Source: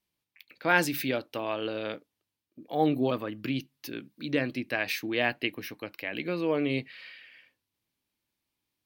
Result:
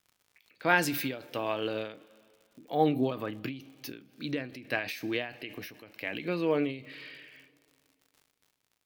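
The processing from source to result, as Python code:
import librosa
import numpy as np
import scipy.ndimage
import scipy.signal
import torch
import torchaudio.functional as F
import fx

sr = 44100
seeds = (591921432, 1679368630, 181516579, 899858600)

y = fx.dmg_crackle(x, sr, seeds[0], per_s=95.0, level_db=-47.0)
y = fx.rev_double_slope(y, sr, seeds[1], early_s=0.22, late_s=2.5, knee_db=-19, drr_db=13.5)
y = fx.end_taper(y, sr, db_per_s=110.0)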